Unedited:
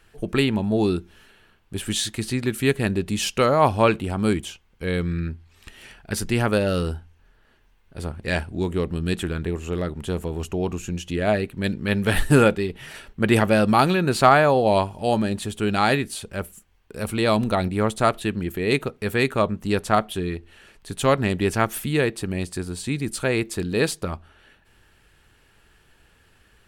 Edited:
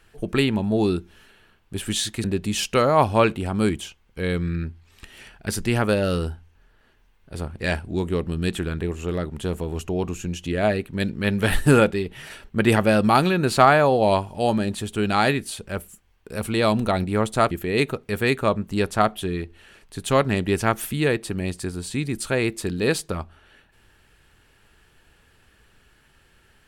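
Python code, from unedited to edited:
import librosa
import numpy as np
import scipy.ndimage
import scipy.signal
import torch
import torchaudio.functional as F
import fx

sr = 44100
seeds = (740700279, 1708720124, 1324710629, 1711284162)

y = fx.edit(x, sr, fx.cut(start_s=2.24, length_s=0.64),
    fx.cut(start_s=18.15, length_s=0.29), tone=tone)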